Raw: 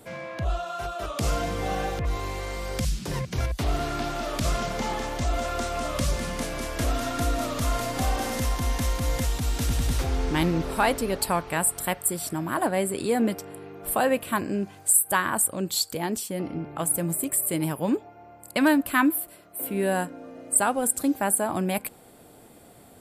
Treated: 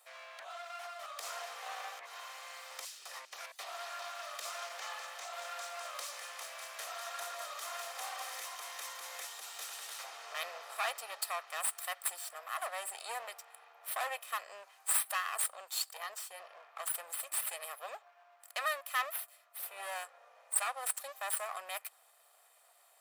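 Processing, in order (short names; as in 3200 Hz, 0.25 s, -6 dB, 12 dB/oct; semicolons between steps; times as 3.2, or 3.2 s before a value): minimum comb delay 1.6 ms; HPF 790 Hz 24 dB/oct; gain -8.5 dB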